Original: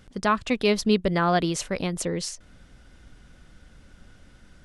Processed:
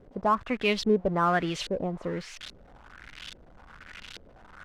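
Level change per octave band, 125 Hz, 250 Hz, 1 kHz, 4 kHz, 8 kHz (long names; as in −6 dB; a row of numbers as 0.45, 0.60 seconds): −5.0, −4.5, −1.0, −3.5, −12.0 decibels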